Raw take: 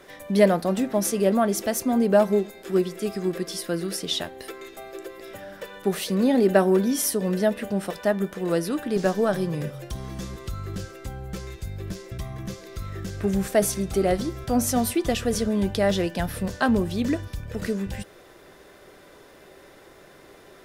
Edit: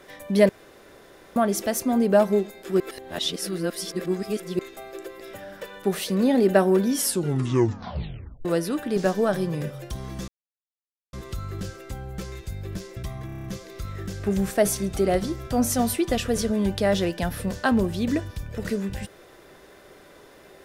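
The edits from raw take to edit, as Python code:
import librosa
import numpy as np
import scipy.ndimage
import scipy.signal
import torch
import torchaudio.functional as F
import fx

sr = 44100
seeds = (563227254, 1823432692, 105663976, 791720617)

y = fx.edit(x, sr, fx.room_tone_fill(start_s=0.49, length_s=0.87),
    fx.reverse_span(start_s=2.8, length_s=1.79),
    fx.tape_stop(start_s=6.96, length_s=1.49),
    fx.insert_silence(at_s=10.28, length_s=0.85),
    fx.stutter(start_s=12.41, slice_s=0.03, count=7), tone=tone)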